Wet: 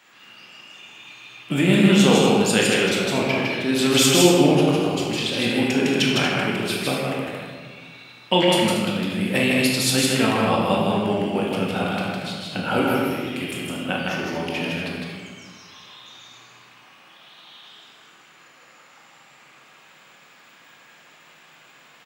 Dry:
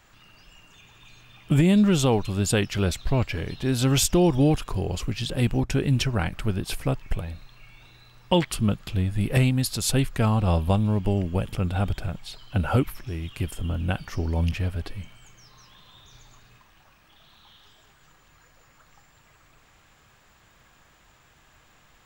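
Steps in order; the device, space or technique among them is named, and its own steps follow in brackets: stadium PA (HPF 180 Hz 24 dB/oct; bell 2700 Hz +6 dB 1.5 oct; loudspeakers at several distances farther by 54 m -2 dB, 80 m -10 dB; reverb RT60 1.6 s, pre-delay 17 ms, DRR -1.5 dB)

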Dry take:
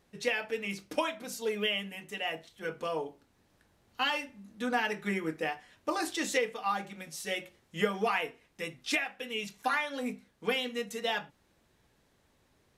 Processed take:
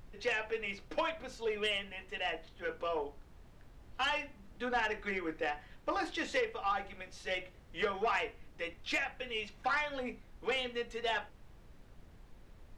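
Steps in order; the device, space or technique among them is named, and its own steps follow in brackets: aircraft cabin announcement (BPF 360–3400 Hz; soft clip -24.5 dBFS, distortion -16 dB; brown noise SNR 15 dB)

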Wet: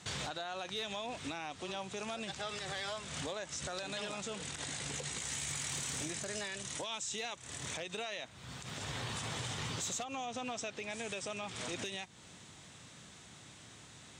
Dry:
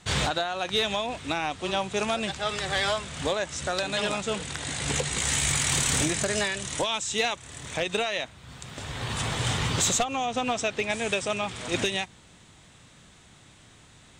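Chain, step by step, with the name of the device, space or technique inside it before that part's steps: broadcast voice chain (HPF 90 Hz; de-esser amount 40%; compressor 4:1, threshold -36 dBFS, peak gain reduction 13 dB; bell 5800 Hz +4 dB 0.85 oct; limiter -28.5 dBFS, peak gain reduction 9.5 dB); gain -1.5 dB

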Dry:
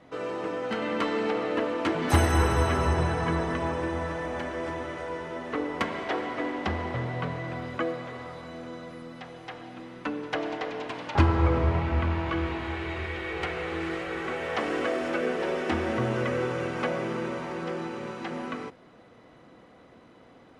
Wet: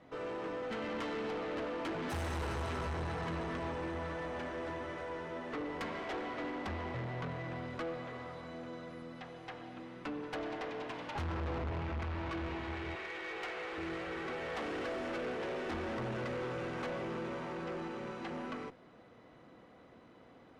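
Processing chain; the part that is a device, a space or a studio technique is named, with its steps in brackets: 12.95–13.78 Bessel high-pass 450 Hz, order 2; tube preamp driven hard (tube stage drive 31 dB, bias 0.3; high shelf 6900 Hz -7 dB); gain -4 dB

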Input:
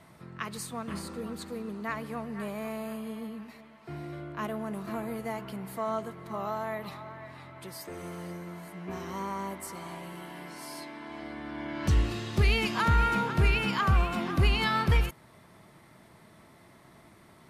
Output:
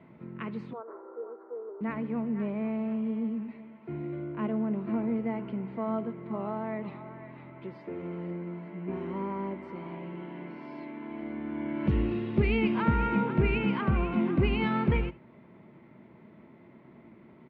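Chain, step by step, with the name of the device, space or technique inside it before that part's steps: 0.73–1.81 elliptic band-pass 400–1400 Hz, stop band 40 dB; bass cabinet (speaker cabinet 78–2300 Hz, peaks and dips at 93 Hz -8 dB, 230 Hz +7 dB, 360 Hz +4 dB, 740 Hz -7 dB, 1200 Hz -9 dB, 1700 Hz -9 dB); echo 74 ms -20 dB; gain +2 dB

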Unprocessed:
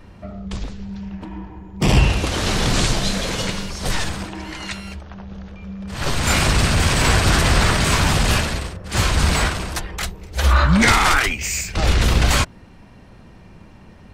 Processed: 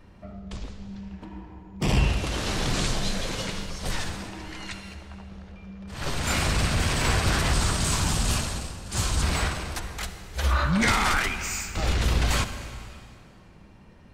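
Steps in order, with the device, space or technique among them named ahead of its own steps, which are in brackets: saturated reverb return (on a send at -8 dB: reverb RT60 2.4 s, pre-delay 48 ms + soft clip -10 dBFS, distortion -16 dB); 7.53–9.22 on the sum: graphic EQ 500/2000/8000 Hz -4/-6/+6 dB; gain -8 dB

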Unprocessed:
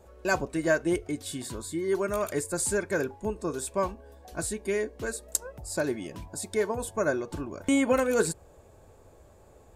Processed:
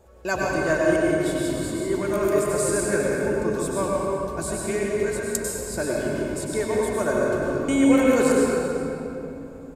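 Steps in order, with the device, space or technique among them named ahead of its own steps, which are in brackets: cave (echo 0.388 s -17 dB; reverb RT60 3.2 s, pre-delay 91 ms, DRR -4 dB)

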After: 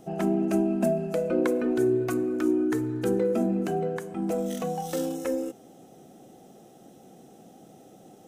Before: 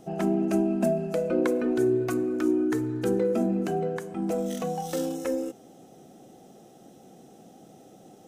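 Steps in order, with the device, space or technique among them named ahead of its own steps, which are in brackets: exciter from parts (in parallel at -11 dB: HPF 4200 Hz + soft clip -37 dBFS, distortion -15 dB + HPF 4700 Hz 12 dB/oct)

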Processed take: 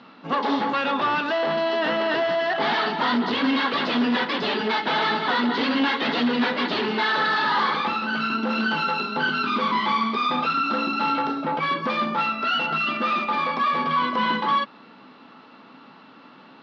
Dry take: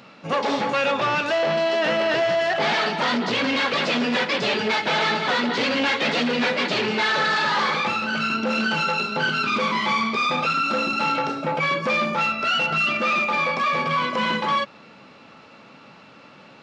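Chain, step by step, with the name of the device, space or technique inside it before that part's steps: kitchen radio (speaker cabinet 200–4300 Hz, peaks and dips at 260 Hz +6 dB, 560 Hz -7 dB, 1000 Hz +3 dB, 2400 Hz -8 dB)

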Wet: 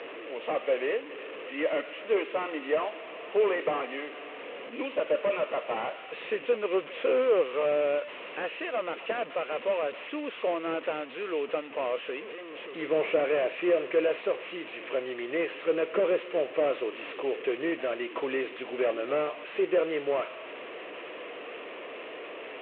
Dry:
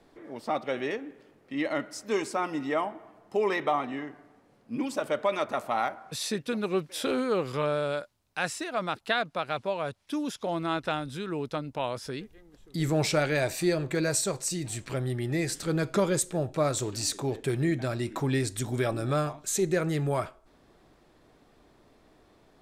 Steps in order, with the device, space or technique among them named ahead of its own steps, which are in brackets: digital answering machine (BPF 370–3100 Hz; delta modulation 16 kbps, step -39 dBFS; speaker cabinet 360–4200 Hz, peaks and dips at 490 Hz +7 dB, 830 Hz -9 dB, 1500 Hz -6 dB, 2700 Hz +6 dB); gain +4.5 dB

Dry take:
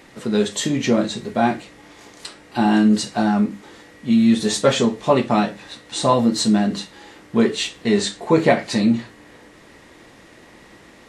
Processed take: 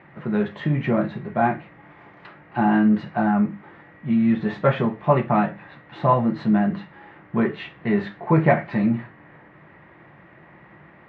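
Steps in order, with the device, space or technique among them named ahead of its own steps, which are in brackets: bass cabinet (speaker cabinet 81–2100 Hz, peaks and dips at 150 Hz +9 dB, 260 Hz -10 dB, 460 Hz -9 dB)

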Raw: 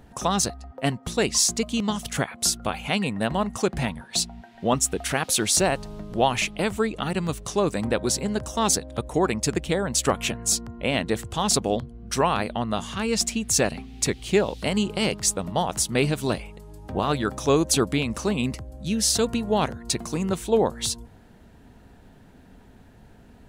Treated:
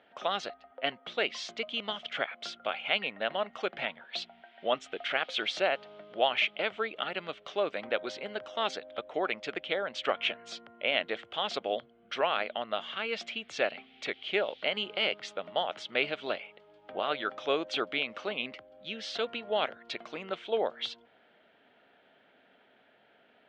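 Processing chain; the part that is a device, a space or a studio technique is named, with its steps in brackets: phone earpiece (speaker cabinet 490–3600 Hz, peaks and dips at 610 Hz +6 dB, 980 Hz -6 dB, 1400 Hz +5 dB, 2200 Hz +6 dB, 3200 Hz +9 dB); gain -6.5 dB

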